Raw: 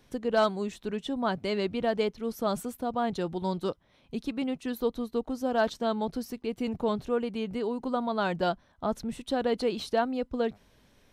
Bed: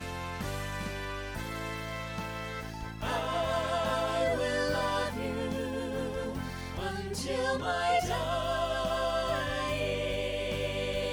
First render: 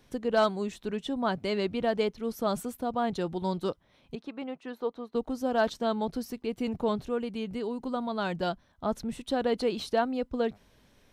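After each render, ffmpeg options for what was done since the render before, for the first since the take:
-filter_complex "[0:a]asettb=1/sr,asplit=3[a][b][c];[a]atrim=end=4.154[d];[b]atrim=start=4.15:end=5.15,asetpts=PTS-STARTPTS,afade=t=in:d=0.004:c=qsin,afade=t=out:st=0.996:d=0.004:c=qsin,bandpass=f=930:t=q:w=0.68[e];[c]atrim=start=5.146[f];[d][e]acrossfade=d=0.004:c1=hsin:c2=qsin[g];[g][f]acrossfade=d=0.004:c1=qsin:c2=hsin,asettb=1/sr,asplit=3[h][i][j];[h]atrim=end=7.054[k];[i]atrim=start=7.05:end=8.86,asetpts=PTS-STARTPTS,afade=t=in:d=0.004:c=qsin,afade=t=out:st=1.806:d=0.004:c=qsin,equalizer=f=800:t=o:w=3:g=-3.5[l];[j]atrim=start=8.856[m];[k][l]acrossfade=d=0.004:c1=hsin:c2=qsin[n];[n][m]acrossfade=d=0.004:c1=qsin:c2=hsin"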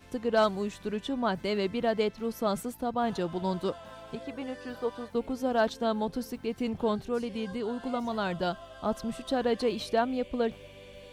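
-filter_complex "[1:a]volume=-16.5dB[a];[0:a][a]amix=inputs=2:normalize=0"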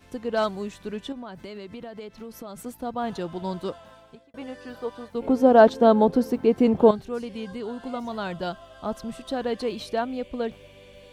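-filter_complex "[0:a]asettb=1/sr,asplit=3[a][b][c];[a]atrim=end=1.124[d];[b]atrim=start=1.12:end=2.66,asetpts=PTS-STARTPTS,afade=t=in:d=0.004:c=qsin,afade=t=out:st=1.536:d=0.004:c=qsin,acompressor=threshold=-34dB:ratio=10:attack=3.2:release=140:knee=1:detection=peak[e];[c]atrim=start=2.656[f];[d][e]acrossfade=d=0.004:c1=hsin:c2=qsin[g];[g][f]acrossfade=d=0.004:c1=qsin:c2=hsin,asettb=1/sr,asplit=3[h][i][j];[h]atrim=end=5.224[k];[i]atrim=start=5.22:end=6.91,asetpts=PTS-STARTPTS,afade=t=in:d=0.004:c=qsin,afade=t=out:st=1.686:d=0.004:c=qsin,equalizer=f=420:w=0.31:g=14[l];[j]atrim=start=6.906[m];[k][l]acrossfade=d=0.004:c1=hsin:c2=qsin[n];[n][m]acrossfade=d=0.004:c1=qsin:c2=hsin,asplit=2[o][p];[o]atrim=end=4.34,asetpts=PTS-STARTPTS,afade=t=out:st=3.74:d=0.6[q];[p]atrim=start=4.34,asetpts=PTS-STARTPTS,afade=t=in:d=0.004:c=hsin[r];[q][r]concat=n=2:v=0:a=1"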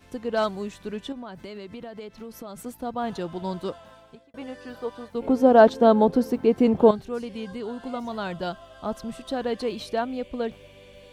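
-af anull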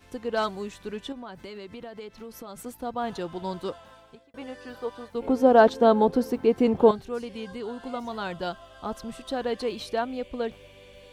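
-af "equalizer=f=180:t=o:w=1.5:g=-4,bandreject=f=630:w=12"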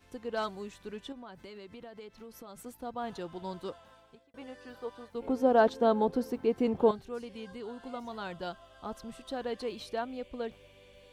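-af "volume=-7dB"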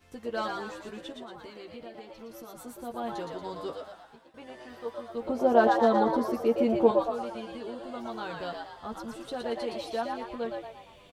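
-filter_complex "[0:a]asplit=2[a][b];[b]adelay=13,volume=-5dB[c];[a][c]amix=inputs=2:normalize=0,asplit=2[d][e];[e]asplit=6[f][g][h][i][j][k];[f]adelay=116,afreqshift=110,volume=-4dB[l];[g]adelay=232,afreqshift=220,volume=-10.7dB[m];[h]adelay=348,afreqshift=330,volume=-17.5dB[n];[i]adelay=464,afreqshift=440,volume=-24.2dB[o];[j]adelay=580,afreqshift=550,volume=-31dB[p];[k]adelay=696,afreqshift=660,volume=-37.7dB[q];[l][m][n][o][p][q]amix=inputs=6:normalize=0[r];[d][r]amix=inputs=2:normalize=0"

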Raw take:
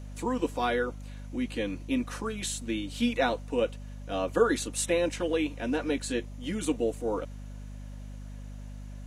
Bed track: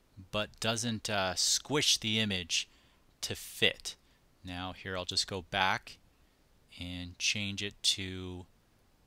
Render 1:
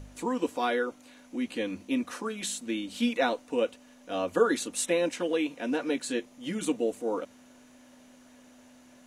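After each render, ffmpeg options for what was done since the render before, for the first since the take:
-af "bandreject=f=50:t=h:w=4,bandreject=f=100:t=h:w=4,bandreject=f=150:t=h:w=4,bandreject=f=200:t=h:w=4"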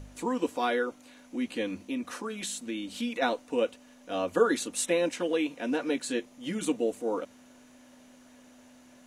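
-filter_complex "[0:a]asplit=3[a][b][c];[a]afade=t=out:st=1.84:d=0.02[d];[b]acompressor=threshold=-32dB:ratio=2:attack=3.2:release=140:knee=1:detection=peak,afade=t=in:st=1.84:d=0.02,afade=t=out:st=3.21:d=0.02[e];[c]afade=t=in:st=3.21:d=0.02[f];[d][e][f]amix=inputs=3:normalize=0"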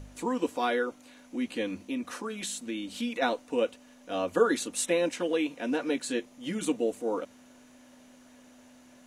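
-af anull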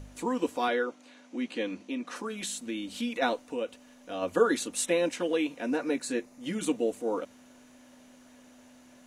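-filter_complex "[0:a]asettb=1/sr,asplit=3[a][b][c];[a]atrim=end=0.684[d];[b]atrim=start=0.68:end=2.16,asetpts=PTS-STARTPTS,afade=t=in:d=0.004:c=qsin,afade=t=out:st=1.476:d=0.004:c=qsin,highpass=200,lowpass=6.9k[e];[c]atrim=start=2.156[f];[d][e]acrossfade=d=0.004:c1=hsin:c2=qsin[g];[g][f]acrossfade=d=0.004:c1=qsin:c2=hsin,asplit=3[h][i][j];[h]afade=t=out:st=3.5:d=0.02[k];[i]acompressor=threshold=-38dB:ratio=1.5:attack=3.2:release=140:knee=1:detection=peak,afade=t=in:st=3.5:d=0.02,afade=t=out:st=4.21:d=0.02[l];[j]afade=t=in:st=4.21:d=0.02[m];[k][l][m]amix=inputs=3:normalize=0,asettb=1/sr,asplit=3[n][o][p];[n]atrim=end=5.624[q];[o]atrim=start=5.62:end=6.46,asetpts=PTS-STARTPTS,afade=t=in:d=0.004:c=qsin,afade=t=out:st=0.836:d=0.004:c=qsin,equalizer=f=3.2k:t=o:w=0.26:g=-13[r];[p]atrim=start=6.456[s];[q][r]acrossfade=d=0.004:c1=hsin:c2=qsin[t];[t][s]acrossfade=d=0.004:c1=qsin:c2=hsin"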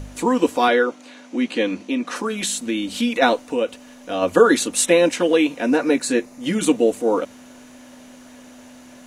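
-af "volume=11.5dB,alimiter=limit=-2dB:level=0:latency=1"

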